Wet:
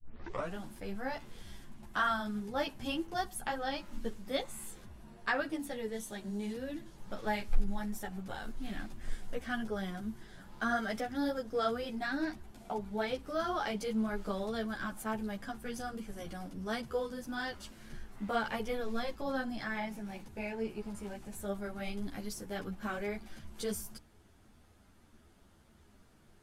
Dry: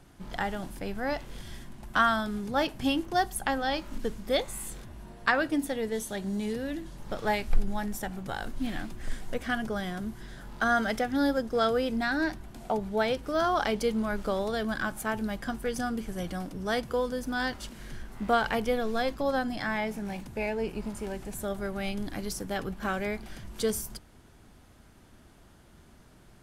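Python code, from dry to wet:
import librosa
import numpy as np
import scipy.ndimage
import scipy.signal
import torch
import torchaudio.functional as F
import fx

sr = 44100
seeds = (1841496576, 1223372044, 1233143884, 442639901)

y = fx.tape_start_head(x, sr, length_s=0.56)
y = fx.ensemble(y, sr)
y = y * librosa.db_to_amplitude(-4.0)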